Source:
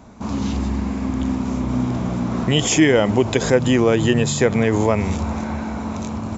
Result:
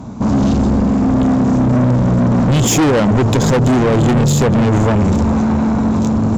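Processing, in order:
graphic EQ with 10 bands 125 Hz +10 dB, 250 Hz +6 dB, 1,000 Hz +3 dB, 2,000 Hz −6 dB
tube saturation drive 19 dB, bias 0.3
level +9 dB

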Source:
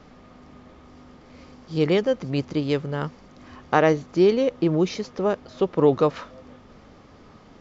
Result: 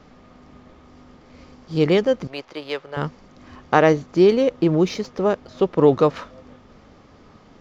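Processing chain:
0:02.27–0:02.97: three-way crossover with the lows and the highs turned down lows −24 dB, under 480 Hz, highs −12 dB, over 5,300 Hz
in parallel at −7 dB: slack as between gear wheels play −34.5 dBFS

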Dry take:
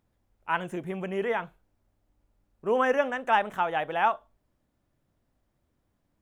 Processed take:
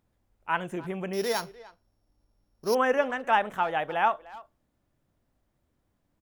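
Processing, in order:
0:01.13–0:02.75: samples sorted by size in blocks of 8 samples
far-end echo of a speakerphone 300 ms, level −19 dB

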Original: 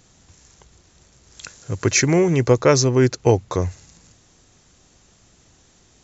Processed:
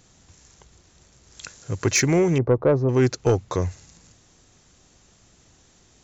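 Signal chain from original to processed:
0:02.38–0:02.89: Chebyshev low-pass filter 760 Hz, order 2
soft clipping −8 dBFS, distortion −18 dB
level −1.5 dB

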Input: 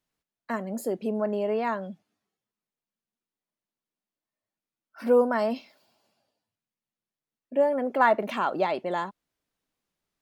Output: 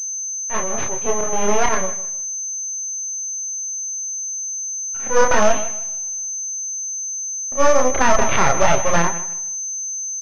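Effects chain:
high-pass filter 740 Hz 12 dB per octave
comb filter 7.4 ms, depth 46%
volume swells 120 ms
in parallel at −10 dB: sample-rate reduction 2,400 Hz
on the sum: half-wave rectification
multi-voice chorus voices 2, 0.33 Hz, delay 28 ms, depth 4.4 ms
on a send: repeating echo 155 ms, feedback 25%, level −15.5 dB
on the sum: boost into a limiter +23 dB
switching amplifier with a slow clock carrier 6,200 Hz
level −1 dB

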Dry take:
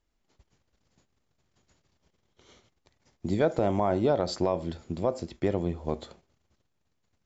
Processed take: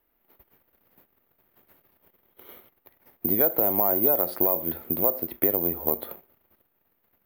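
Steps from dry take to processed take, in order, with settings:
three-way crossover with the lows and the highs turned down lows −13 dB, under 230 Hz, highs −21 dB, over 2,900 Hz
downward compressor 2.5 to 1, threshold −36 dBFS, peak gain reduction 11 dB
bad sample-rate conversion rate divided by 3×, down filtered, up zero stuff
level +8.5 dB

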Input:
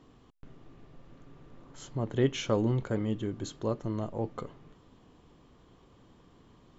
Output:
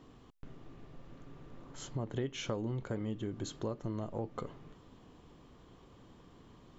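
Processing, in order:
downward compressor 5 to 1, threshold −35 dBFS, peak gain reduction 13.5 dB
level +1 dB

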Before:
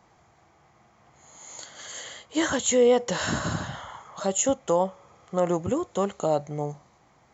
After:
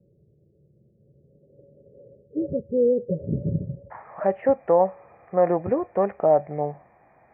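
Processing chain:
Chebyshev low-pass with heavy ripple 580 Hz, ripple 9 dB, from 0:03.90 2,500 Hz
level +7.5 dB

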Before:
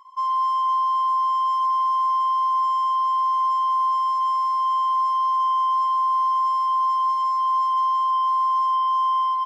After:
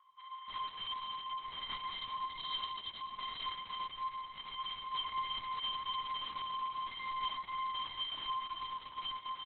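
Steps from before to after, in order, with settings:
elliptic high-pass filter 1,200 Hz, stop band 50 dB
slap from a distant wall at 110 metres, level −8 dB
rotating-speaker cabinet horn 1.1 Hz
wrap-around overflow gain 32.5 dB
double-tracking delay 22 ms −8.5 dB
repeating echo 358 ms, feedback 17%, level −10.5 dB
on a send at −2 dB: convolution reverb RT60 5.0 s, pre-delay 169 ms
0:01.91–0:03.45: on the sum: bad sample-rate conversion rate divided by 6×, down filtered, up zero stuff
level −4 dB
Opus 6 kbit/s 48,000 Hz

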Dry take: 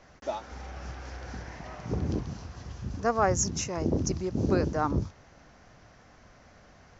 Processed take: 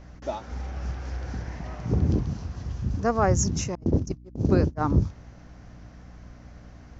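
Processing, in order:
0:03.75–0:04.81: noise gate −26 dBFS, range −44 dB
low-shelf EQ 280 Hz +9.5 dB
mains hum 60 Hz, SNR 20 dB

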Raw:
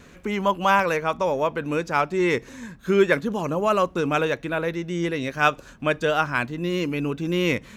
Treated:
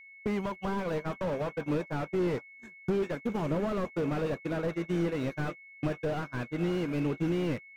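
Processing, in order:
in parallel at −2 dB: brickwall limiter −14.5 dBFS, peak gain reduction 9 dB
on the sum: downward compressor 6 to 1, threshold −24 dBFS, peak gain reduction 13.5 dB
on a send: feedback delay with all-pass diffusion 500 ms, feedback 62%, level −15 dB
on the sum: upward compression, threshold −33 dBFS
noise gate −27 dBFS, range −51 dB
steady tone 2,200 Hz −48 dBFS
slew-rate limiting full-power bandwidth 24 Hz
level −1.5 dB

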